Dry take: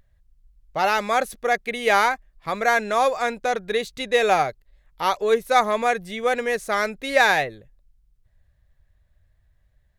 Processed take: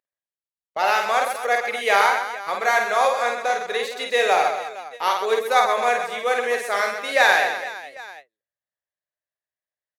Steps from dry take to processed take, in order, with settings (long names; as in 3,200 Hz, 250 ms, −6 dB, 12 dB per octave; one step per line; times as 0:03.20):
high-pass filter 480 Hz 12 dB per octave
on a send: reverse bouncing-ball delay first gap 50 ms, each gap 1.6×, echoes 5
on the sum: noise gate with hold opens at −27 dBFS